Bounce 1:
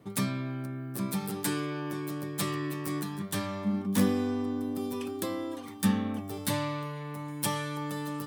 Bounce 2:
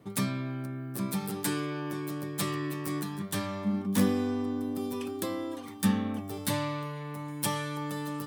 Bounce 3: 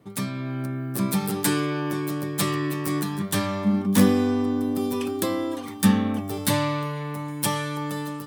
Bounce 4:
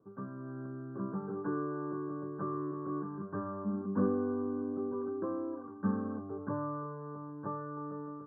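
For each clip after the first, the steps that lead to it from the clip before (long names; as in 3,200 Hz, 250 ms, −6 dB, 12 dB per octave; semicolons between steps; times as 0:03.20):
no processing that can be heard
automatic gain control gain up to 8 dB
Chebyshev low-pass with heavy ripple 1,600 Hz, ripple 9 dB; level −7 dB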